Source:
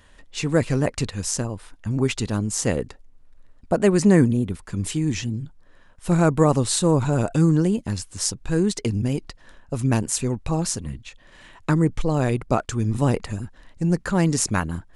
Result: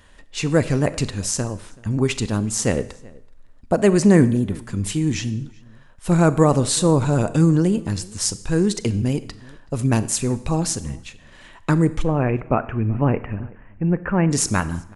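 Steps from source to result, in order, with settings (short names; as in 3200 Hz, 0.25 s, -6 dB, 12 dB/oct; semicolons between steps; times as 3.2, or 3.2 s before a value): 12.03–14.31 elliptic low-pass 2600 Hz, stop band 40 dB; outdoor echo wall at 65 m, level -24 dB; Schroeder reverb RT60 0.68 s, combs from 28 ms, DRR 14.5 dB; gain +2 dB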